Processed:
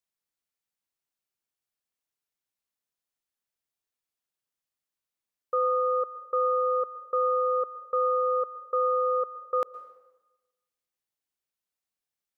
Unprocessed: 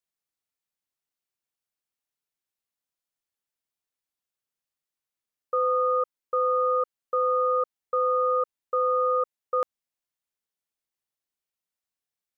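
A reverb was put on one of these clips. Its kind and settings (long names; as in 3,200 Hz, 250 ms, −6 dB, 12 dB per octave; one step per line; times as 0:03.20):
dense smooth reverb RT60 1.1 s, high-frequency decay 0.85×, pre-delay 105 ms, DRR 16 dB
level −1 dB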